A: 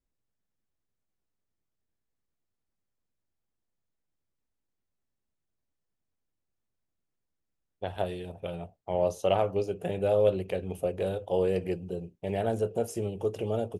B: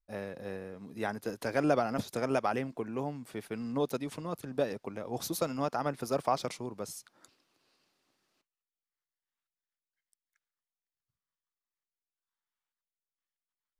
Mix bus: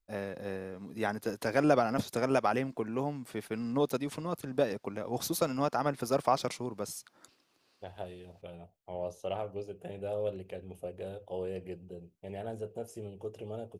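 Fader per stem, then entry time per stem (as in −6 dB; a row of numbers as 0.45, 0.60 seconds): −10.5, +2.0 decibels; 0.00, 0.00 seconds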